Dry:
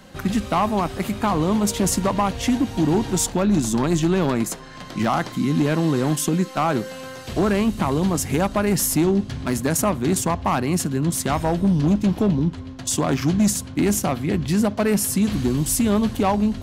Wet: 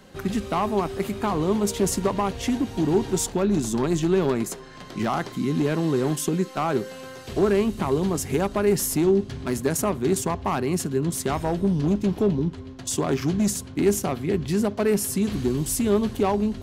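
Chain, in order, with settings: bell 400 Hz +10 dB 0.23 oct; gain -4.5 dB

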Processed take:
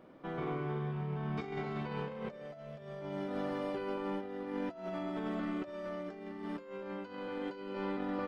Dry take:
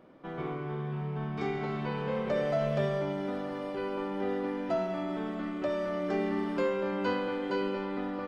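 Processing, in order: negative-ratio compressor -35 dBFS, ratio -0.5; gain -3.5 dB

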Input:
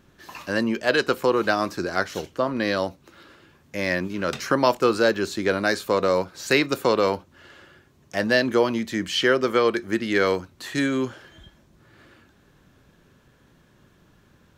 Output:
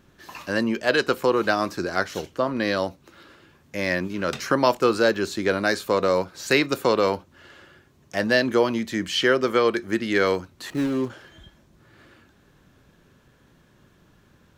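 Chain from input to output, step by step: 10.7–11.1 median filter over 25 samples

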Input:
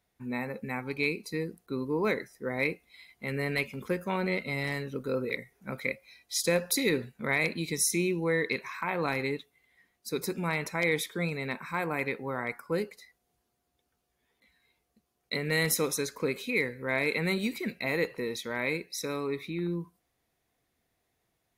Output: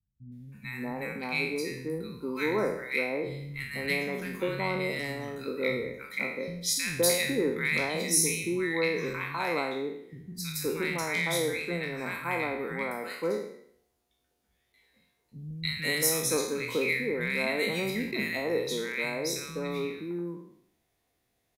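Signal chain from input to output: spectral trails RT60 0.66 s; three bands offset in time lows, highs, mids 0.32/0.52 s, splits 180/1400 Hz

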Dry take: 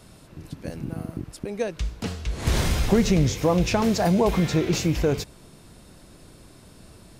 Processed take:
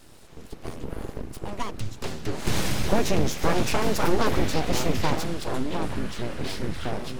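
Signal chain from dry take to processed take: echoes that change speed 0.131 s, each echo -5 st, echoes 3, each echo -6 dB; full-wave rectifier

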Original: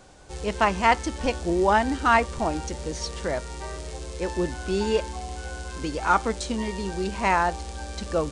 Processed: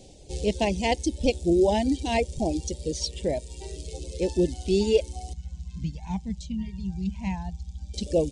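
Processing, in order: Butterworth band-stop 1300 Hz, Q 0.56; high shelf 9000 Hz -4 dB; reverb removal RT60 1.8 s; 5.33–7.94 EQ curve 100 Hz 0 dB, 180 Hz +7 dB, 290 Hz -19 dB, 510 Hz -29 dB, 950 Hz -3 dB, 4700 Hz -15 dB, 6800 Hz -13 dB, 11000 Hz -28 dB; gain +4.5 dB

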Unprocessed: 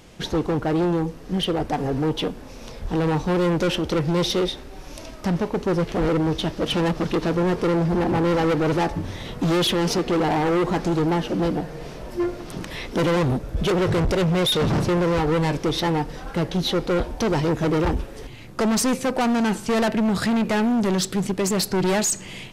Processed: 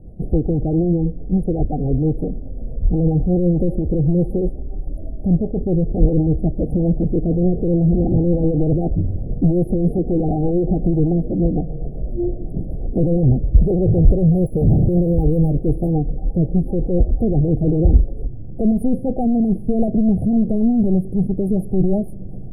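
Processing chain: 14.25–15.94 careless resampling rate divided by 6×, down filtered, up hold; rotary speaker horn 8 Hz; brick-wall FIR band-stop 810–9000 Hz; RIAA curve playback; gain -1 dB

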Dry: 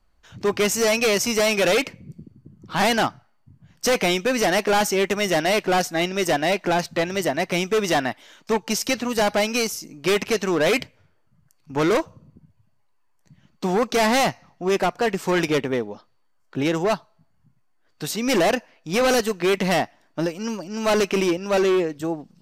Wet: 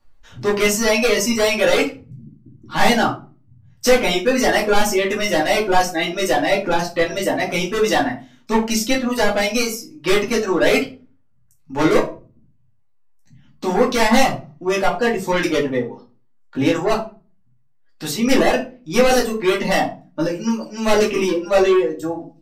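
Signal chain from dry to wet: reverb removal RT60 1.7 s; shoebox room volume 170 m³, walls furnished, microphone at 2.4 m; gain -1 dB

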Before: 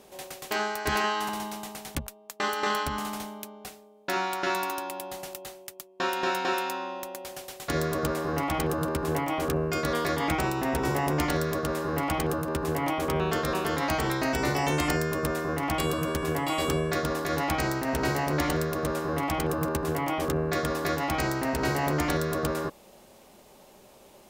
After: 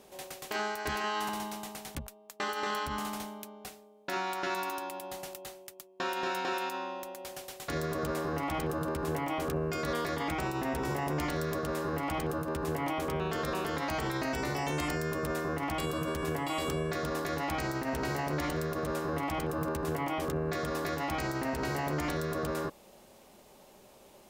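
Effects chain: limiter -21.5 dBFS, peak gain reduction 6.5 dB; gain -3 dB

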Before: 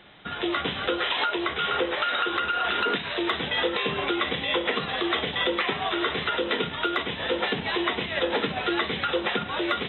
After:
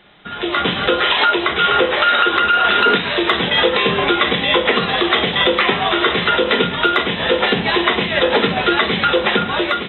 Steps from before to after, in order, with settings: AGC gain up to 9.5 dB; on a send: reverb RT60 0.45 s, pre-delay 5 ms, DRR 9 dB; on the sum: gain +1.5 dB

